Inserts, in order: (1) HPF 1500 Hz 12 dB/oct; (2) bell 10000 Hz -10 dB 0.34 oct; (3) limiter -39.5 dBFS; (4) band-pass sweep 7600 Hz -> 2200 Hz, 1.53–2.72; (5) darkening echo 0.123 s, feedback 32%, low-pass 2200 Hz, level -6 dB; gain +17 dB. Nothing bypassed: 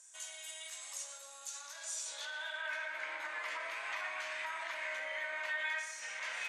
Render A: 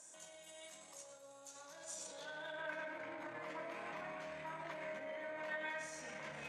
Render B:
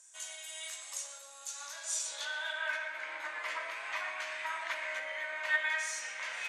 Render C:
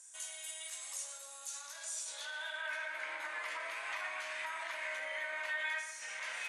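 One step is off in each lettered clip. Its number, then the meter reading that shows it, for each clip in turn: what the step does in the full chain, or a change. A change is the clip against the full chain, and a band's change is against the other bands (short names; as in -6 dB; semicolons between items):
1, momentary loudness spread change +3 LU; 3, mean gain reduction 2.5 dB; 2, momentary loudness spread change -2 LU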